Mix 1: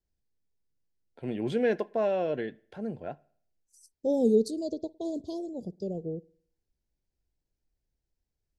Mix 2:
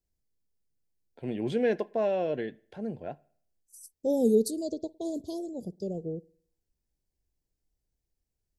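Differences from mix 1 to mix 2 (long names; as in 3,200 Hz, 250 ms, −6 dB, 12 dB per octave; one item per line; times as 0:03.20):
second voice: remove low-pass filter 5,700 Hz 12 dB per octave
master: add parametric band 1,300 Hz −5 dB 0.5 octaves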